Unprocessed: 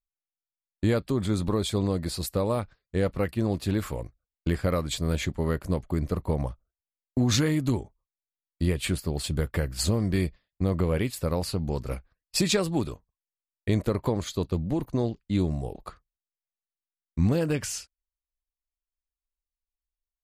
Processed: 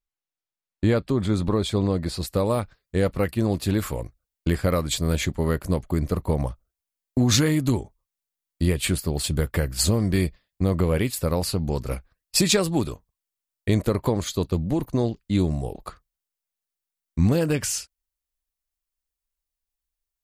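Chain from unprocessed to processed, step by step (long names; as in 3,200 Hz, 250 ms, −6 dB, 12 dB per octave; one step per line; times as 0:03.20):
high-shelf EQ 6,800 Hz −8 dB, from 0:02.33 +6 dB
level +3.5 dB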